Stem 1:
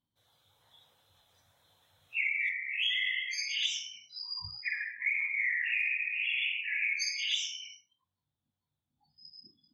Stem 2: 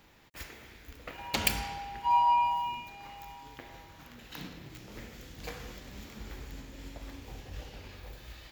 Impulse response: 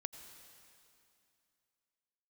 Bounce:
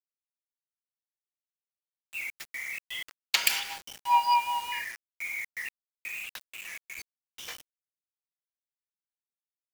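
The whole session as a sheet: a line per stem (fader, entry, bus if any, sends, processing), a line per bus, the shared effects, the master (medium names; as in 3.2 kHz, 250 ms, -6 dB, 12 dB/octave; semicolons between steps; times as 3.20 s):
6.06 s -5.5 dB -> 6.40 s -12 dB, 0.00 s, no send, peak limiter -29.5 dBFS, peak gain reduction 10.5 dB; trance gate "x.x...xx..x" 124 bpm -24 dB
+2.0 dB, 2.00 s, no send, high-pass 1.2 kHz 12 dB/octave; gate -44 dBFS, range -18 dB; rotary cabinet horn 5 Hz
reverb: none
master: level rider gain up to 7 dB; bit crusher 7-bit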